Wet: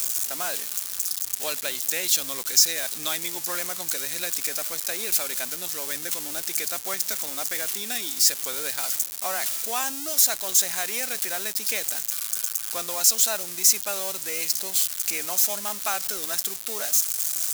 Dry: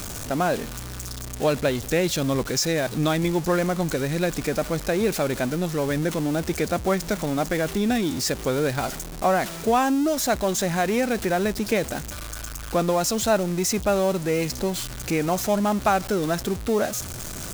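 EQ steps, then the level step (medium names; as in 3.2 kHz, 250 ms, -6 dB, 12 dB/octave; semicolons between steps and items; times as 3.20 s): high-pass 91 Hz 6 dB/octave; differentiator; +8.5 dB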